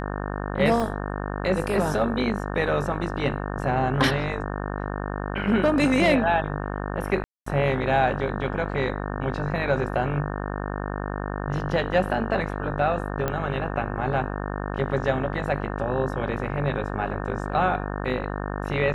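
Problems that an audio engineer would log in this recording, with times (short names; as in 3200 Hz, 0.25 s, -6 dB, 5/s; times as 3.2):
buzz 50 Hz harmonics 36 -30 dBFS
0.8 gap 3.3 ms
7.24–7.46 gap 0.224 s
13.28 pop -12 dBFS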